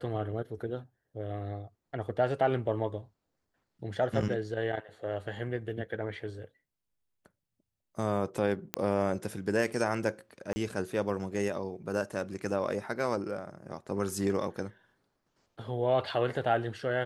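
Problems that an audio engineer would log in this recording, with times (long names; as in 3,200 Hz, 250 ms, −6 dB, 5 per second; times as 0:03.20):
0:08.74: click −12 dBFS
0:10.53–0:10.56: drop-out 30 ms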